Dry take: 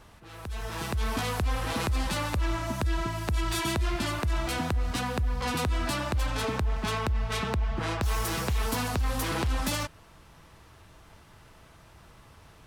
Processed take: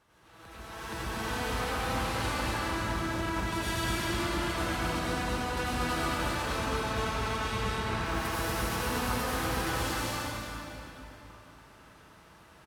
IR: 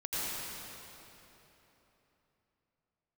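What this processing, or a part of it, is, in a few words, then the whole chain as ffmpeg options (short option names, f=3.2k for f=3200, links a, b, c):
stadium PA: -filter_complex "[0:a]highpass=f=160:p=1,equalizer=f=1.5k:t=o:w=0.69:g=3,aecho=1:1:201.2|239.1:0.355|0.794[a];[1:a]atrim=start_sample=2205[b];[a][b]afir=irnorm=-1:irlink=0,volume=-9dB"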